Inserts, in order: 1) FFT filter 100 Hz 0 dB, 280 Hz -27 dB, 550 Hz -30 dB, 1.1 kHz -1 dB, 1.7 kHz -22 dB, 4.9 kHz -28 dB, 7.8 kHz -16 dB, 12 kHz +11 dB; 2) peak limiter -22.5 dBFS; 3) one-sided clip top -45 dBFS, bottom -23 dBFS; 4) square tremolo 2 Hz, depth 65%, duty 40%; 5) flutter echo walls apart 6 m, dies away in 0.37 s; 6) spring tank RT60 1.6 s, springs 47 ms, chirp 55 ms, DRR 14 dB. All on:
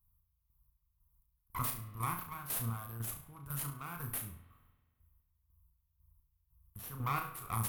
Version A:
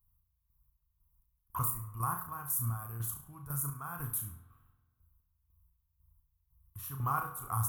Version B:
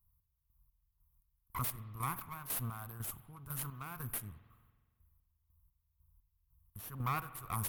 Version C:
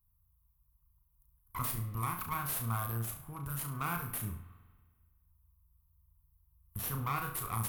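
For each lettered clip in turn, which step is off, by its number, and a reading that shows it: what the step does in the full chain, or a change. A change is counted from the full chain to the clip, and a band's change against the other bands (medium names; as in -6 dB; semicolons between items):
3, distortion -8 dB; 5, echo-to-direct -3.5 dB to -14.0 dB; 4, crest factor change -3.0 dB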